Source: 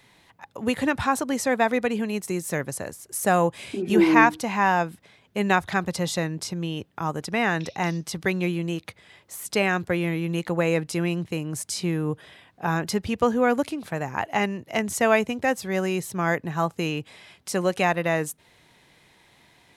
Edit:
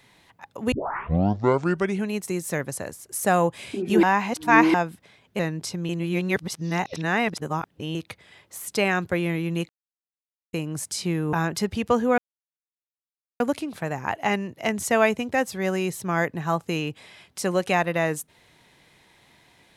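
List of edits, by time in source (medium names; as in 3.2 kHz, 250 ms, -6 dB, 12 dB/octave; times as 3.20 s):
0.72 s: tape start 1.38 s
4.03–4.74 s: reverse
5.39–6.17 s: delete
6.67–8.73 s: reverse
10.47–11.31 s: mute
12.11–12.65 s: delete
13.50 s: insert silence 1.22 s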